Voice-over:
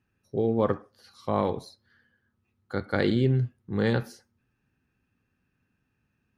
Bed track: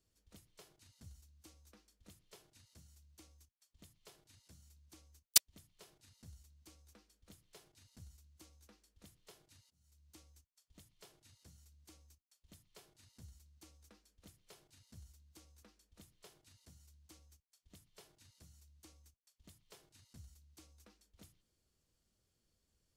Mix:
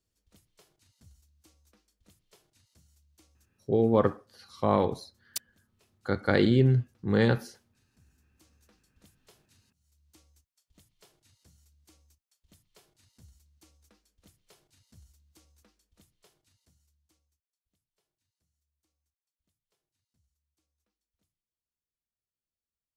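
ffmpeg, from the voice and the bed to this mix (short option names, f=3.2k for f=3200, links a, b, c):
-filter_complex "[0:a]adelay=3350,volume=1.5dB[a];[1:a]volume=7.5dB,afade=t=out:st=3.45:d=0.64:silence=0.421697,afade=t=in:st=8.09:d=0.63:silence=0.354813,afade=t=out:st=15.54:d=1.95:silence=0.0944061[b];[a][b]amix=inputs=2:normalize=0"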